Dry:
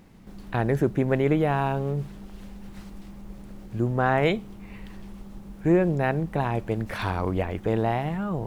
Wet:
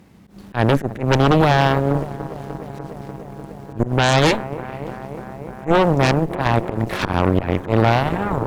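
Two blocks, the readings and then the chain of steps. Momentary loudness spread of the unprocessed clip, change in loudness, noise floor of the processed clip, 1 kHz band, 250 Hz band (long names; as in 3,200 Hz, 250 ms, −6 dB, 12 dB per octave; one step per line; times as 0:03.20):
21 LU, +7.0 dB, −40 dBFS, +9.0 dB, +6.0 dB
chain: high-pass filter 53 Hz 24 dB per octave
volume swells 109 ms
delay with a low-pass on its return 297 ms, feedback 85%, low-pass 1,200 Hz, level −14.5 dB
harmonic generator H 3 −11 dB, 5 −11 dB, 6 −6 dB, 7 −24 dB, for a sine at −9 dBFS
level +3 dB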